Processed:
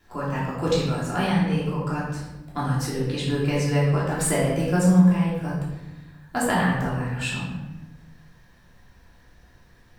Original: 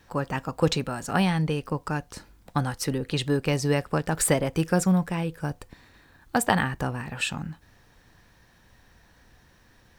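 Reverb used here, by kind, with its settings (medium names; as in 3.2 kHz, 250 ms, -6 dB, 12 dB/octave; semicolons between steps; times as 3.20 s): simulated room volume 440 m³, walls mixed, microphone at 3.1 m; trim -7.5 dB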